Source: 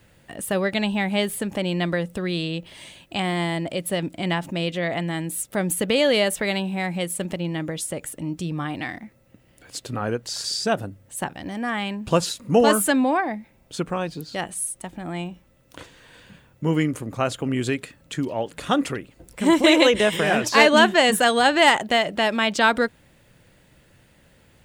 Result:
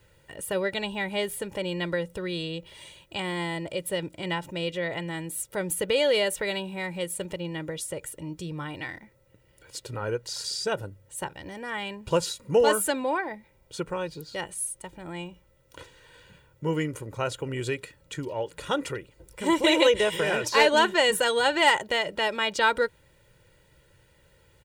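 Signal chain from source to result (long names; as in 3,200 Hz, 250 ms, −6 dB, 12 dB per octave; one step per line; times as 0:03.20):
comb filter 2.1 ms, depth 65%
level −6 dB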